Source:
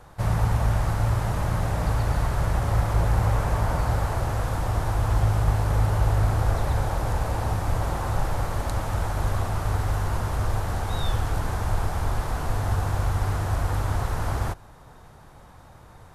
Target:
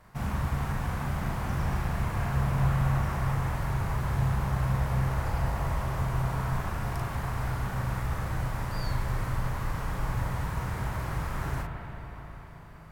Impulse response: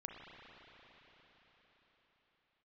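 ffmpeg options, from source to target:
-filter_complex "[0:a]asetrate=55125,aresample=44100,asplit=2[a][b];[1:a]atrim=start_sample=2205,adelay=39[c];[b][c]afir=irnorm=-1:irlink=0,volume=2.5dB[d];[a][d]amix=inputs=2:normalize=0,volume=-8.5dB"

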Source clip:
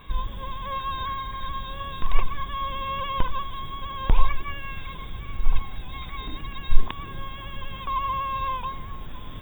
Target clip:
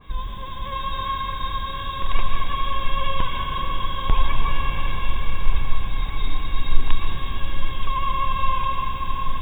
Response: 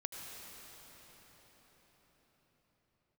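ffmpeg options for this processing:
-filter_complex "[1:a]atrim=start_sample=2205,asetrate=29988,aresample=44100[a];[0:a][a]afir=irnorm=-1:irlink=0,adynamicequalizer=threshold=0.0112:dfrequency=2000:dqfactor=0.7:tfrequency=2000:tqfactor=0.7:attack=5:release=100:ratio=0.375:range=2:mode=boostabove:tftype=highshelf,volume=1dB"

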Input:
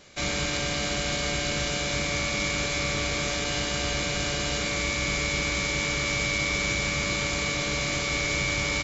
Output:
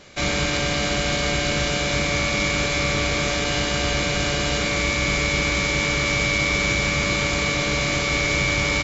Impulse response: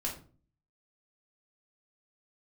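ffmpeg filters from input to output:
-af "highshelf=f=5.8k:g=-7,volume=6.5dB"

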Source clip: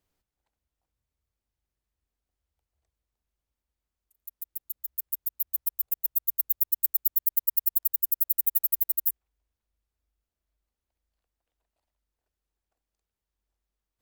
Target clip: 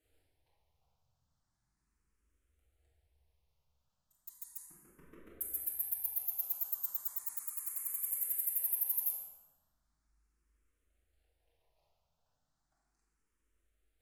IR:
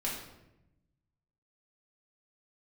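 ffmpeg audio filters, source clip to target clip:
-filter_complex "[0:a]alimiter=limit=-14dB:level=0:latency=1,asettb=1/sr,asplit=3[a][b][c];[a]atrim=end=4.654[d];[b]atrim=start=4.65:end=5.41,asetpts=PTS-STARTPTS,afade=t=in:d=0.004:c=qsin,afade=t=out:st=0.756:d=0.004:c=qsin,adynamicsmooth=sensitivity=3:basefreq=740[e];[c]atrim=start=5.406[f];[d][e]acrossfade=d=0.004:c1=hsin:c2=qsin[g];[g][f]acrossfade=d=0.004:c1=qsin:c2=hsin[h];[1:a]atrim=start_sample=2205,asetrate=26019,aresample=44100[i];[h][i]afir=irnorm=-1:irlink=0,asplit=2[j][k];[k]afreqshift=0.36[l];[j][l]amix=inputs=2:normalize=1"

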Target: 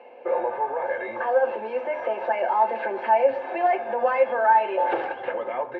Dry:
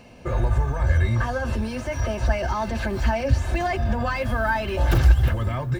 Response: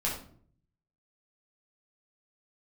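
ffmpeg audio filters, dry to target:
-filter_complex "[0:a]highpass=f=390:w=0.5412,highpass=f=390:w=1.3066,equalizer=f=520:t=q:w=4:g=7,equalizer=f=840:t=q:w=4:g=9,equalizer=f=1.2k:t=q:w=4:g=-8,equalizer=f=1.8k:t=q:w=4:g=-4,lowpass=f=2.3k:w=0.5412,lowpass=f=2.3k:w=1.3066,bandreject=f=630:w=12,asplit=2[a][b];[1:a]atrim=start_sample=2205[c];[b][c]afir=irnorm=-1:irlink=0,volume=-12.5dB[d];[a][d]amix=inputs=2:normalize=0"

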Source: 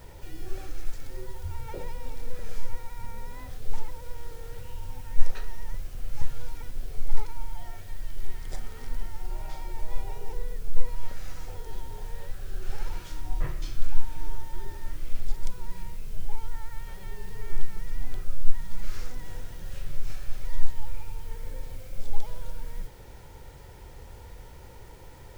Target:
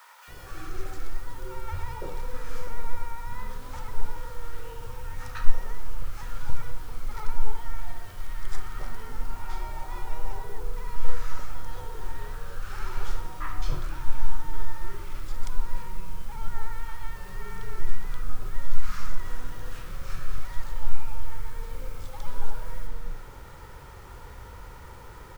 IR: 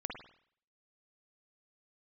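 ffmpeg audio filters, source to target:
-filter_complex "[0:a]equalizer=f=1.2k:w=1.8:g=13.5,acrossover=split=830[a][b];[a]adelay=280[c];[c][b]amix=inputs=2:normalize=0,asplit=2[d][e];[1:a]atrim=start_sample=2205[f];[e][f]afir=irnorm=-1:irlink=0,volume=-4dB[g];[d][g]amix=inputs=2:normalize=0,volume=-2.5dB"

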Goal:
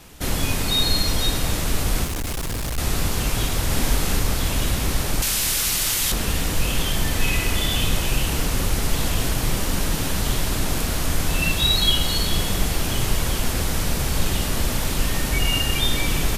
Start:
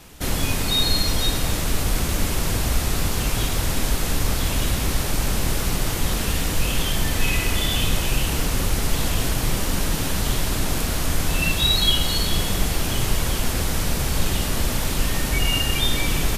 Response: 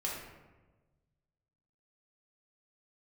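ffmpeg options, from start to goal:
-filter_complex "[0:a]asettb=1/sr,asplit=3[a][b][c];[a]atrim=end=2.044[d];[b]atrim=start=2.04:end=2.78,asetpts=PTS-STARTPTS,afade=t=in:d=0.004:c=qsin,afade=t=out:st=0.736:d=0.004:c=qsin,volume=23.5dB,asoftclip=hard,volume=-23.5dB[e];[c]atrim=start=2.776[f];[d][e]acrossfade=d=0.004:c1=hsin:c2=qsin[g];[g][f]acrossfade=d=0.004:c1=qsin:c2=hsin,asettb=1/sr,asplit=3[h][i][j];[h]atrim=end=3.674[k];[i]atrim=start=3.67:end=4.2,asetpts=PTS-STARTPTS,afade=t=in:d=0.004:c=qsin,afade=t=out:st=0.526:d=0.004:c=qsin,asplit=2[l][m];[m]adelay=42,volume=-4dB[n];[l][n]amix=inputs=2:normalize=0,atrim=end_sample=23373[o];[j]atrim=start=4.196[p];[k][o]acrossfade=d=0.004:c1=hsin:c2=qsin[q];[q][p]acrossfade=d=0.004:c1=qsin:c2=hsin,asettb=1/sr,asplit=3[r][s][t];[r]atrim=end=5.224[u];[s]atrim=start=5.22:end=6.12,asetpts=PTS-STARTPTS,afade=t=in:d=0.004:c=qsin,afade=t=out:st=0.896:d=0.004:c=qsin,tiltshelf=f=1.4k:g=-9[v];[t]atrim=start=6.116[w];[u][v]acrossfade=d=0.004:c1=hsin:c2=qsin[x];[x][w]acrossfade=d=0.004:c1=qsin:c2=hsin"

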